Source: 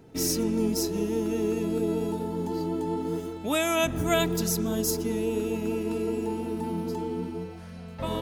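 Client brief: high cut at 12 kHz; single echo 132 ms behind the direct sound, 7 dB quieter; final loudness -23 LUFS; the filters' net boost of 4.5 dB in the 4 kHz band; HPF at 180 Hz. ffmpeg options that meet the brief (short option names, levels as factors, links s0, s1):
-af "highpass=180,lowpass=12000,equalizer=f=4000:t=o:g=6,aecho=1:1:132:0.447,volume=1.68"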